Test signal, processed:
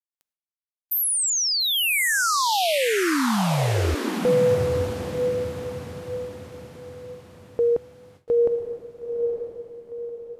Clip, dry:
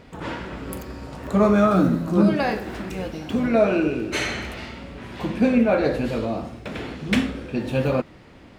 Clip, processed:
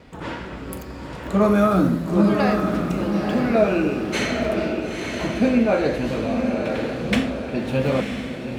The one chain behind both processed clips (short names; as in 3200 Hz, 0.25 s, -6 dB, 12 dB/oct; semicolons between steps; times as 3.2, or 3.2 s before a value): diffused feedback echo 0.931 s, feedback 43%, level -4.5 dB; gate with hold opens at -40 dBFS